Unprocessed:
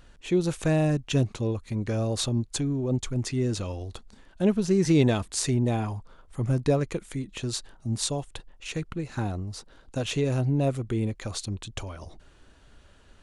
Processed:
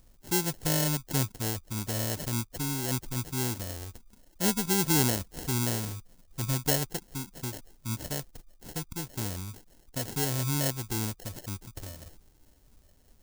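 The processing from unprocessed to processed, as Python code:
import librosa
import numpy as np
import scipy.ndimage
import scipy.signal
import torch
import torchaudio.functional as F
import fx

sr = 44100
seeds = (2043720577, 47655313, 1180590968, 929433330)

y = fx.spec_topn(x, sr, count=32)
y = fx.sample_hold(y, sr, seeds[0], rate_hz=1200.0, jitter_pct=0)
y = fx.bass_treble(y, sr, bass_db=2, treble_db=15)
y = y * 10.0 ** (-7.0 / 20.0)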